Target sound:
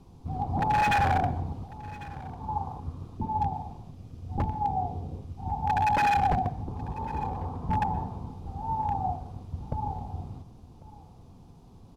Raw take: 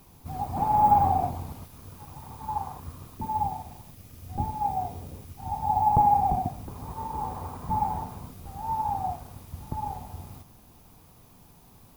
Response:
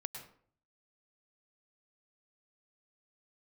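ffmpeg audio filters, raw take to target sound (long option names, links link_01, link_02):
-filter_complex "[0:a]acrossover=split=3500[link_01][link_02];[link_02]acompressor=threshold=-60dB:ratio=4:attack=1:release=60[link_03];[link_01][link_03]amix=inputs=2:normalize=0,lowpass=5100,equalizer=frequency=1900:width_type=o:width=1.7:gain=-14.5,bandreject=frequency=600:width=12,acrossover=split=2800[link_04][link_05];[link_04]aeval=exprs='0.0708*(abs(mod(val(0)/0.0708+3,4)-2)-1)':channel_layout=same[link_06];[link_06][link_05]amix=inputs=2:normalize=0,aecho=1:1:1097:0.106,asplit=2[link_07][link_08];[1:a]atrim=start_sample=2205,asetrate=36603,aresample=44100[link_09];[link_08][link_09]afir=irnorm=-1:irlink=0,volume=-11dB[link_10];[link_07][link_10]amix=inputs=2:normalize=0,volume=2.5dB"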